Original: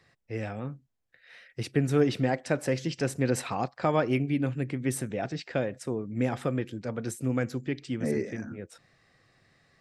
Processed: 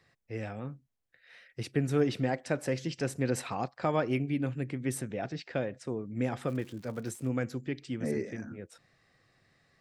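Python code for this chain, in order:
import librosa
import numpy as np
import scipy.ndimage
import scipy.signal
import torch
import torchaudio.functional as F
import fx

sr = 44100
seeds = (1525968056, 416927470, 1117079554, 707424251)

y = fx.lowpass(x, sr, hz=6800.0, slope=12, at=(5.01, 5.89))
y = fx.dmg_crackle(y, sr, seeds[0], per_s=200.0, level_db=-39.0, at=(6.46, 7.27), fade=0.02)
y = F.gain(torch.from_numpy(y), -3.5).numpy()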